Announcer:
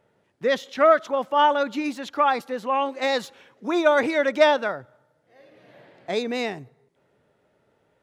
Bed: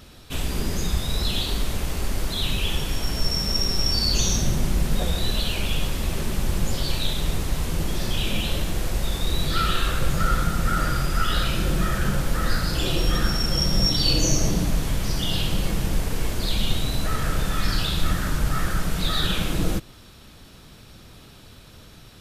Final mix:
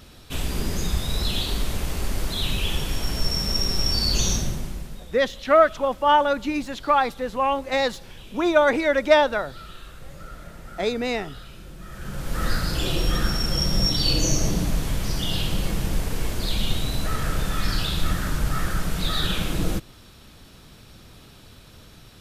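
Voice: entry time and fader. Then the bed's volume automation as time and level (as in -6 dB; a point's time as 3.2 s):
4.70 s, +1.0 dB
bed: 4.32 s -0.5 dB
5.1 s -19 dB
11.79 s -19 dB
12.43 s -1 dB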